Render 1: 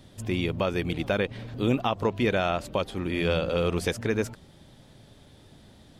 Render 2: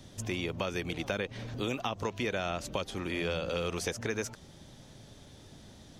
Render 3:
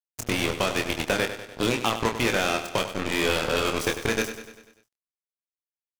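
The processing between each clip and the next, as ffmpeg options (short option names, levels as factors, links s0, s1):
-filter_complex "[0:a]equalizer=f=6100:t=o:w=0.45:g=9,acrossover=split=470|1400[s0][s1][s2];[s0]acompressor=threshold=0.0141:ratio=4[s3];[s1]acompressor=threshold=0.0141:ratio=4[s4];[s2]acompressor=threshold=0.0158:ratio=4[s5];[s3][s4][s5]amix=inputs=3:normalize=0"
-filter_complex "[0:a]acrusher=bits=4:mix=0:aa=0.5,asplit=2[s0][s1];[s1]adelay=26,volume=0.531[s2];[s0][s2]amix=inputs=2:normalize=0,aecho=1:1:98|196|294|392|490|588:0.282|0.155|0.0853|0.0469|0.0258|0.0142,volume=2.37"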